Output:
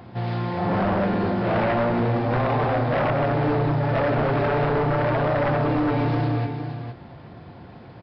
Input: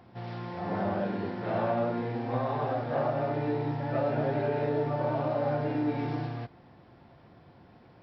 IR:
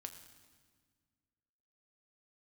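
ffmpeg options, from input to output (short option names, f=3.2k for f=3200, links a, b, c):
-af "equalizer=f=110:t=o:w=1.6:g=3,aecho=1:1:461:0.316,aresample=11025,aeval=exprs='0.158*sin(PI/2*2.82*val(0)/0.158)':c=same,aresample=44100,volume=-2dB"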